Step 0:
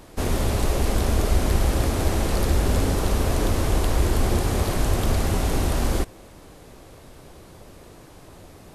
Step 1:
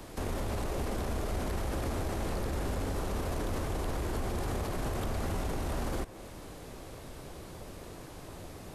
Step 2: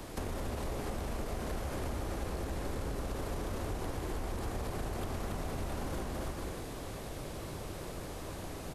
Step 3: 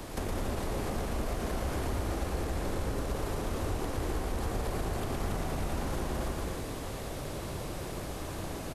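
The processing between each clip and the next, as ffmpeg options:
-filter_complex "[0:a]acrossover=split=95|510|2100[a][b][c][d];[a]acompressor=threshold=-31dB:ratio=4[e];[b]acompressor=threshold=-34dB:ratio=4[f];[c]acompressor=threshold=-37dB:ratio=4[g];[d]acompressor=threshold=-46dB:ratio=4[h];[e][f][g][h]amix=inputs=4:normalize=0,alimiter=level_in=1.5dB:limit=-24dB:level=0:latency=1:release=22,volume=-1.5dB"
-af "aecho=1:1:280|448|548.8|609.3|645.6:0.631|0.398|0.251|0.158|0.1,acompressor=threshold=-35dB:ratio=6,volume=1.5dB"
-af "aecho=1:1:114:0.531,volume=3dB"

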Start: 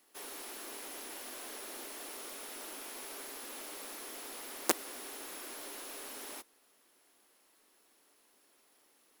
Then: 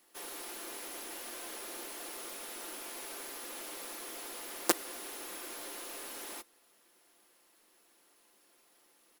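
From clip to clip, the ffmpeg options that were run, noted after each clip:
-af "aecho=1:1:5.8:0.36,volume=1dB"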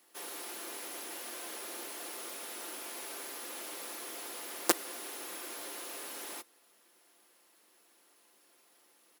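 -af "highpass=f=160:p=1,volume=1dB"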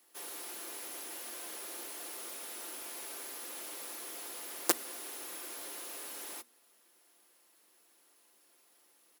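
-af "highshelf=f=5.8k:g=4.5,bandreject=f=80:t=h:w=4,bandreject=f=160:t=h:w=4,bandreject=f=240:t=h:w=4,volume=-3.5dB"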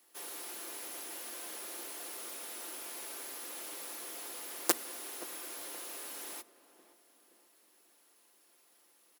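-filter_complex "[0:a]asplit=2[a][b];[b]adelay=523,lowpass=f=960:p=1,volume=-13.5dB,asplit=2[c][d];[d]adelay=523,lowpass=f=960:p=1,volume=0.54,asplit=2[e][f];[f]adelay=523,lowpass=f=960:p=1,volume=0.54,asplit=2[g][h];[h]adelay=523,lowpass=f=960:p=1,volume=0.54,asplit=2[i][j];[j]adelay=523,lowpass=f=960:p=1,volume=0.54[k];[a][c][e][g][i][k]amix=inputs=6:normalize=0"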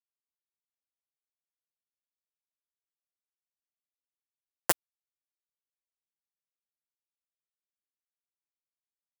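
-af "acrusher=bits=3:mix=0:aa=0.5,volume=15dB,asoftclip=hard,volume=-15dB,volume=5.5dB"

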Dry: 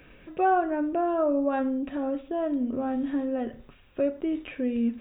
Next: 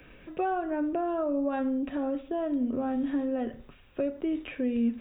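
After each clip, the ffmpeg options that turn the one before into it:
-filter_complex "[0:a]acrossover=split=240|3000[a][b][c];[b]acompressor=threshold=-28dB:ratio=4[d];[a][d][c]amix=inputs=3:normalize=0"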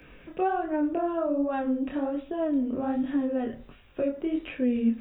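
-af "flanger=delay=19.5:depth=7.8:speed=1.3,volume=4.5dB"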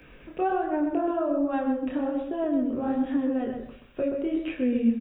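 -filter_complex "[0:a]asplit=2[a][b];[b]adelay=128,lowpass=f=2k:p=1,volume=-5dB,asplit=2[c][d];[d]adelay=128,lowpass=f=2k:p=1,volume=0.26,asplit=2[e][f];[f]adelay=128,lowpass=f=2k:p=1,volume=0.26[g];[a][c][e][g]amix=inputs=4:normalize=0"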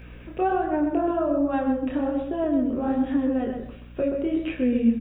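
-af "aeval=exprs='val(0)+0.00562*(sin(2*PI*60*n/s)+sin(2*PI*2*60*n/s)/2+sin(2*PI*3*60*n/s)/3+sin(2*PI*4*60*n/s)/4+sin(2*PI*5*60*n/s)/5)':c=same,volume=2.5dB"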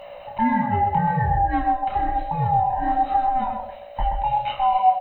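-af "afftfilt=real='real(if(lt(b,1008),b+24*(1-2*mod(floor(b/24),2)),b),0)':imag='imag(if(lt(b,1008),b+24*(1-2*mod(floor(b/24),2)),b),0)':win_size=2048:overlap=0.75,volume=3dB" -ar 44100 -c:a ac3 -b:a 96k

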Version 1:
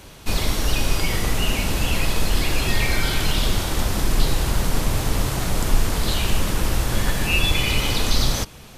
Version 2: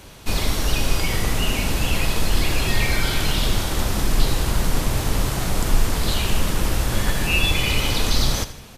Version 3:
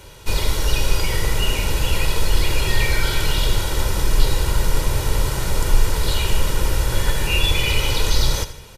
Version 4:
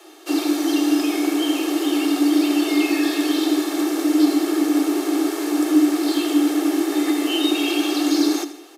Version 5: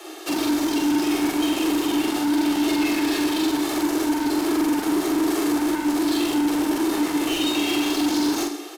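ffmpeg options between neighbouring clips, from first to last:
-af "aecho=1:1:79|158|237|316:0.2|0.0918|0.0422|0.0194"
-af "aecho=1:1:2.1:0.58,volume=-1dB"
-af "afreqshift=280,volume=-3.5dB"
-filter_complex "[0:a]asplit=2[a][b];[b]acompressor=threshold=-25dB:ratio=6,volume=0dB[c];[a][c]amix=inputs=2:normalize=0,asoftclip=type=tanh:threshold=-21.5dB,asplit=2[d][e];[e]adelay=44,volume=-3dB[f];[d][f]amix=inputs=2:normalize=0"

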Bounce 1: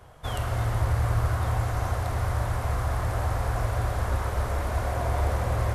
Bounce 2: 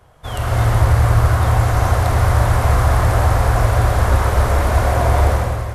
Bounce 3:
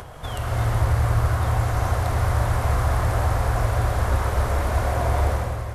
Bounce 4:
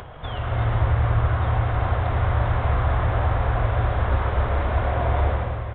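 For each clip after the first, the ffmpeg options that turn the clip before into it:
-af "dynaudnorm=f=120:g=7:m=14dB"
-af "acompressor=mode=upward:threshold=-17dB:ratio=2.5,volume=-7dB"
-af "aresample=8000,aresample=44100"

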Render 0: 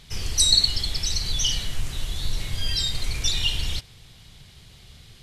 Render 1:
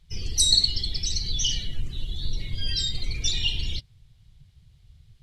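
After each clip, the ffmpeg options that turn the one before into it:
-af "afftdn=nr=18:nf=-37,volume=-1.5dB"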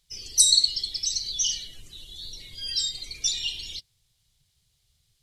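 -af "bass=f=250:g=-12,treble=f=4k:g=14,volume=-7.5dB"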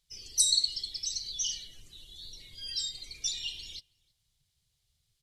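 -filter_complex "[0:a]asplit=2[a][b];[b]adelay=320.7,volume=-28dB,highshelf=f=4k:g=-7.22[c];[a][c]amix=inputs=2:normalize=0,volume=-7dB"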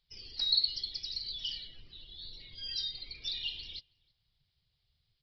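-af "asoftclip=type=tanh:threshold=-15.5dB,acrusher=bits=9:mode=log:mix=0:aa=0.000001,aresample=11025,aresample=44100"

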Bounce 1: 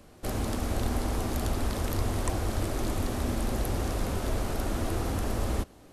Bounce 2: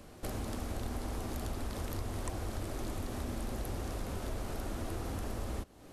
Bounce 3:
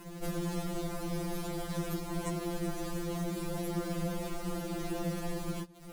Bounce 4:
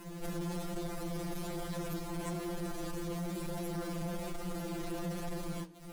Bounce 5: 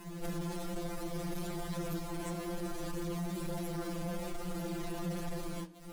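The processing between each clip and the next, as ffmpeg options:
-af "acompressor=threshold=-40dB:ratio=2.5,volume=1dB"
-filter_complex "[0:a]equalizer=f=88:w=0.43:g=13.5,asplit=2[a][b];[b]acrusher=bits=6:mix=0:aa=0.000001,volume=-5dB[c];[a][c]amix=inputs=2:normalize=0,afftfilt=real='re*2.83*eq(mod(b,8),0)':imag='im*2.83*eq(mod(b,8),0)':win_size=2048:overlap=0.75"
-af "flanger=delay=8.9:depth=9.8:regen=-69:speed=1.1:shape=triangular,asoftclip=type=tanh:threshold=-37dB,volume=4.5dB"
-af "flanger=delay=4.7:depth=5.1:regen=-48:speed=0.61:shape=sinusoidal,volume=4dB"

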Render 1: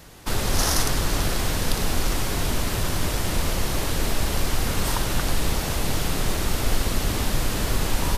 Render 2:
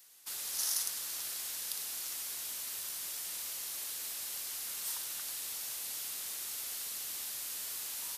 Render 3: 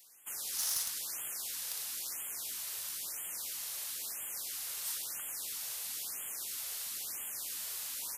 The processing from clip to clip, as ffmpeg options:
-af "aderivative,volume=-7.5dB"
-af "aeval=exprs='0.0531*(abs(mod(val(0)/0.0531+3,4)-2)-1)':c=same,afftfilt=real='re*(1-between(b*sr/1024,240*pow(4900/240,0.5+0.5*sin(2*PI*1*pts/sr))/1.41,240*pow(4900/240,0.5+0.5*sin(2*PI*1*pts/sr))*1.41))':imag='im*(1-between(b*sr/1024,240*pow(4900/240,0.5+0.5*sin(2*PI*1*pts/sr))/1.41,240*pow(4900/240,0.5+0.5*sin(2*PI*1*pts/sr))*1.41))':win_size=1024:overlap=0.75"

